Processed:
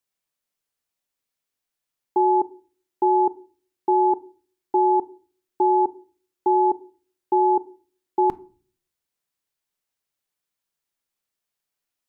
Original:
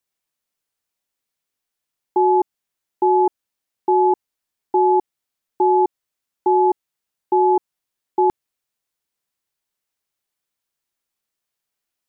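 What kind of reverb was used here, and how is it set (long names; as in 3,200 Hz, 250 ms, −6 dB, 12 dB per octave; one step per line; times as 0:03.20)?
rectangular room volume 320 cubic metres, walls furnished, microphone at 0.3 metres
level −2.5 dB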